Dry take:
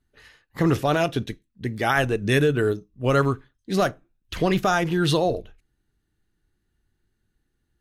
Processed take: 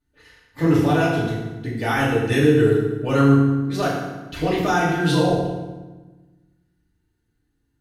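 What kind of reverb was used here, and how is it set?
FDN reverb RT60 1.2 s, low-frequency decay 1.5×, high-frequency decay 0.75×, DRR -8 dB; gain -7.5 dB

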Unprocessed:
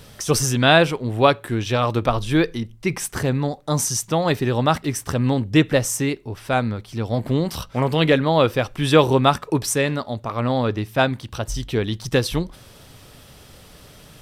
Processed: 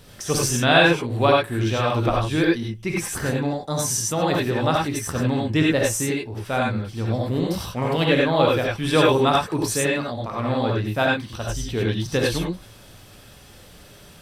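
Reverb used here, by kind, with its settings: non-linear reverb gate 0.12 s rising, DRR -3 dB; gain -5 dB

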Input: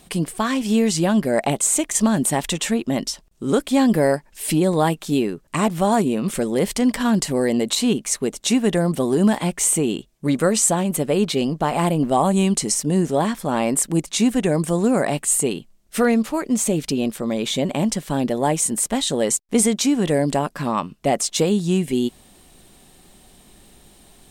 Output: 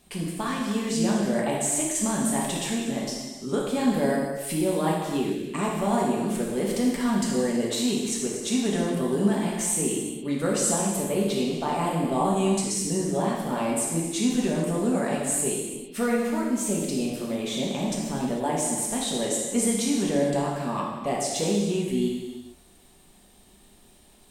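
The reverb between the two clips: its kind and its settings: non-linear reverb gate 0.48 s falling, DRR -4 dB; gain -11 dB

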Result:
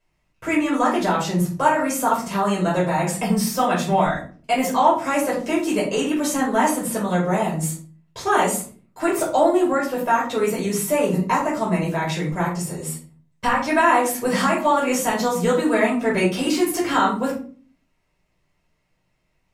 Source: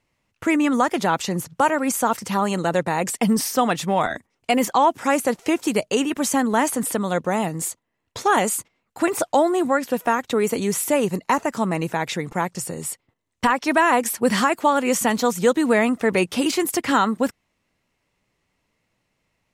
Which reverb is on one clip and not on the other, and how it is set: shoebox room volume 290 m³, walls furnished, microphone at 5.3 m; gain -9 dB

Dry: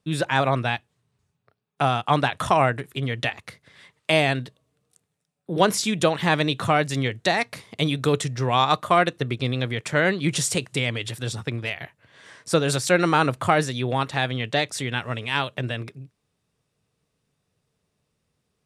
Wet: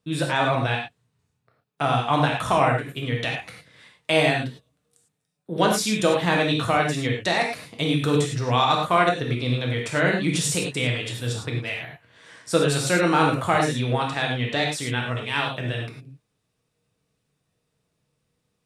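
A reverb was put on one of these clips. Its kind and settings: non-linear reverb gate 0.13 s flat, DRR -0.5 dB; gain -3 dB

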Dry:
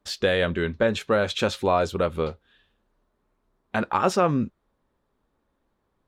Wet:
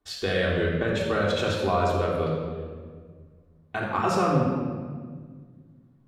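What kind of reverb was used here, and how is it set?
shoebox room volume 2200 m³, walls mixed, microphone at 3.4 m; gain -7 dB

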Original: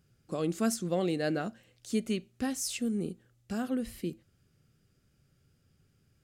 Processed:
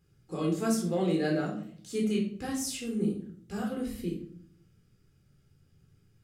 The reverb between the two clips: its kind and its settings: shoebox room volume 650 m³, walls furnished, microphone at 4 m; gain -5 dB

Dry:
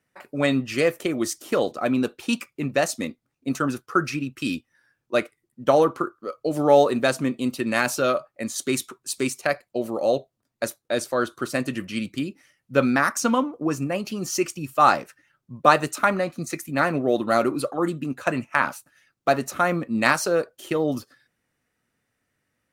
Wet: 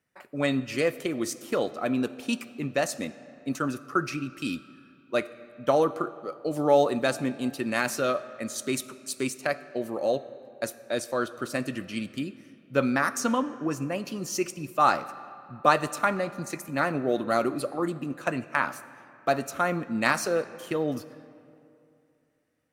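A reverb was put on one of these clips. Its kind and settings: digital reverb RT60 2.7 s, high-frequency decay 0.65×, pre-delay 10 ms, DRR 15.5 dB; gain -4.5 dB

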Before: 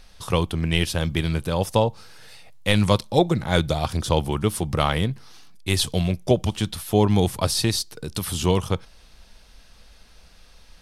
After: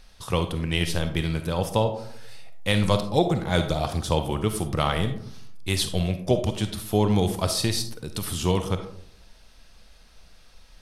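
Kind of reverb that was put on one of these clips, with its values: digital reverb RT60 0.69 s, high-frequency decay 0.35×, pre-delay 10 ms, DRR 7.5 dB; gain -3 dB

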